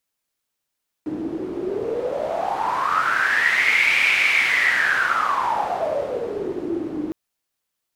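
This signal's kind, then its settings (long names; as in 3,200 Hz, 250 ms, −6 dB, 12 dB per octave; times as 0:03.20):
wind from filtered noise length 6.06 s, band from 310 Hz, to 2,300 Hz, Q 9.8, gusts 1, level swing 9.5 dB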